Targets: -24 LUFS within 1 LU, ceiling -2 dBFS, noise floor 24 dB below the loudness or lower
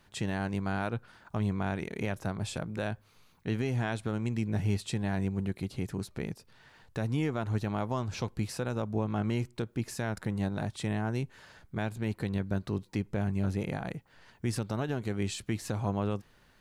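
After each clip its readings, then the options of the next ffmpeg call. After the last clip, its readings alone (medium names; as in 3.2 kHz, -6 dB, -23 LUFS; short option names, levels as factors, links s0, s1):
loudness -34.0 LUFS; peak level -19.5 dBFS; loudness target -24.0 LUFS
-> -af "volume=3.16"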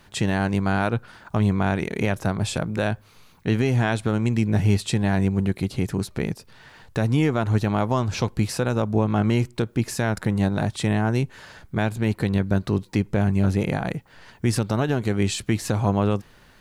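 loudness -24.0 LUFS; peak level -9.5 dBFS; noise floor -53 dBFS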